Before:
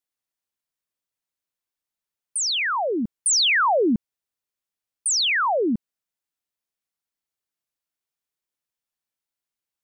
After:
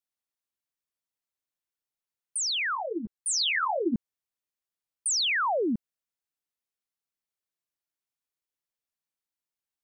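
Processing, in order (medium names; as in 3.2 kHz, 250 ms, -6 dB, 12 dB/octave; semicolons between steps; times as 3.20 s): 2.75–3.94 s: three-phase chorus; trim -5 dB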